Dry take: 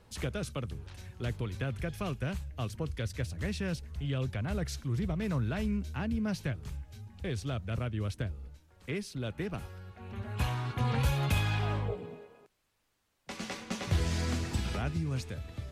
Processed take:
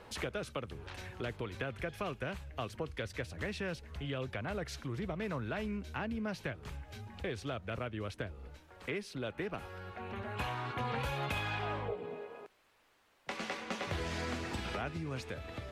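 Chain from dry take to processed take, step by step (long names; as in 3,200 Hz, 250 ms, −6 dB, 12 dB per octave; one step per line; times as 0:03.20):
bass and treble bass −12 dB, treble −10 dB
downward compressor 2 to 1, threshold −54 dBFS, peak gain reduction 12 dB
level +11 dB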